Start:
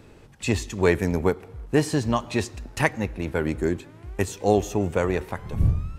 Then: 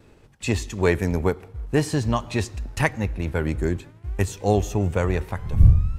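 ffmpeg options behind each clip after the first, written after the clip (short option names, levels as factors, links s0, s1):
-af "asubboost=boost=2.5:cutoff=160,acompressor=mode=upward:threshold=0.0158:ratio=2.5,agate=range=0.0224:threshold=0.0158:ratio=3:detection=peak"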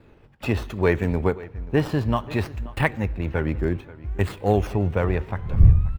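-filter_complex "[0:a]acrossover=split=3900[s0][s1];[s0]aecho=1:1:533:0.106[s2];[s1]acrusher=samples=14:mix=1:aa=0.000001:lfo=1:lforange=14:lforate=0.63[s3];[s2][s3]amix=inputs=2:normalize=0"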